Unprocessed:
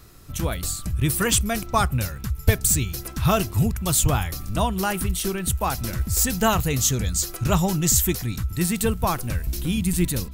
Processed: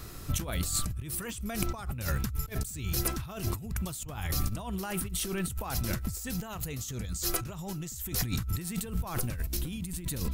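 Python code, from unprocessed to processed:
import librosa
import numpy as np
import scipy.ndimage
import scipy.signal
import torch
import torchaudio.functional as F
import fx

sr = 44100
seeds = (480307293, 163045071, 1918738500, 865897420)

y = fx.over_compress(x, sr, threshold_db=-32.0, ratio=-1.0)
y = y * librosa.db_to_amplitude(-2.5)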